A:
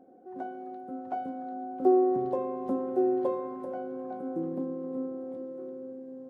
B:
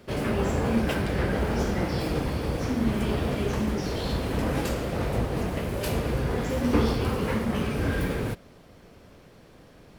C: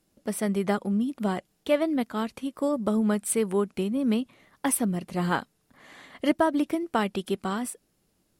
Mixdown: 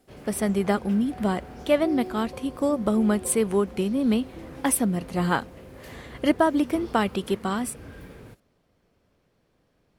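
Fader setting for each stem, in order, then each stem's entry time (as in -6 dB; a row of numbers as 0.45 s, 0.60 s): -11.5 dB, -16.5 dB, +2.5 dB; 0.00 s, 0.00 s, 0.00 s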